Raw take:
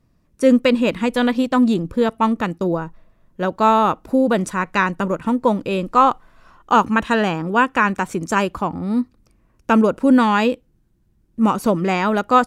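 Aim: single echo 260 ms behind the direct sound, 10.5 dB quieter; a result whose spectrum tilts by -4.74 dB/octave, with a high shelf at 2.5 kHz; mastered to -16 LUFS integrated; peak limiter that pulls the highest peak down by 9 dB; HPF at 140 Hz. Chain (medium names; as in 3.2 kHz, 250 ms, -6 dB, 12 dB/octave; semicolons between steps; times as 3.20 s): high-pass 140 Hz; treble shelf 2.5 kHz +8.5 dB; peak limiter -8.5 dBFS; delay 260 ms -10.5 dB; trim +3.5 dB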